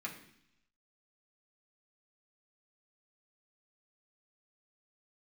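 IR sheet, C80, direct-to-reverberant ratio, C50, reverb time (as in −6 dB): 11.5 dB, −3.0 dB, 9.0 dB, 0.70 s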